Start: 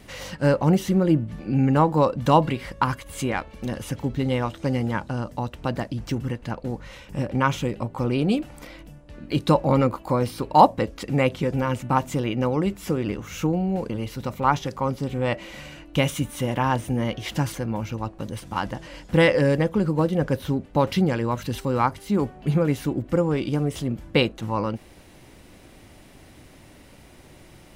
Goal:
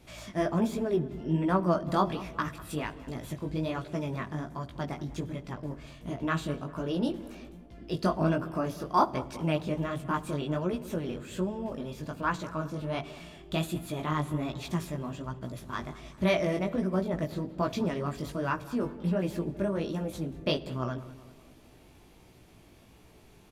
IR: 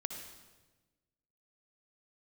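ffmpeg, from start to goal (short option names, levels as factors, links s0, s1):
-filter_complex "[0:a]flanger=delay=18.5:depth=5.8:speed=1.1,asetrate=52038,aresample=44100,asplit=2[s0][s1];[s1]adelay=196,lowpass=f=2000:p=1,volume=0.141,asplit=2[s2][s3];[s3]adelay=196,lowpass=f=2000:p=1,volume=0.53,asplit=2[s4][s5];[s5]adelay=196,lowpass=f=2000:p=1,volume=0.53,asplit=2[s6][s7];[s7]adelay=196,lowpass=f=2000:p=1,volume=0.53,asplit=2[s8][s9];[s9]adelay=196,lowpass=f=2000:p=1,volume=0.53[s10];[s0][s2][s4][s6][s8][s10]amix=inputs=6:normalize=0,asplit=2[s11][s12];[1:a]atrim=start_sample=2205,asetrate=52920,aresample=44100,lowshelf=f=470:g=10[s13];[s12][s13]afir=irnorm=-1:irlink=0,volume=0.237[s14];[s11][s14]amix=inputs=2:normalize=0,aresample=32000,aresample=44100,volume=0.422"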